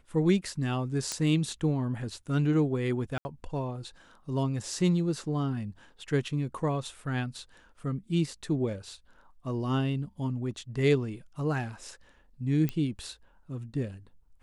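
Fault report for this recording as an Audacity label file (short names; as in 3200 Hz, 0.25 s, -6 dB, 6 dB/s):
1.120000	1.120000	pop -16 dBFS
3.180000	3.250000	gap 70 ms
12.690000	12.690000	pop -17 dBFS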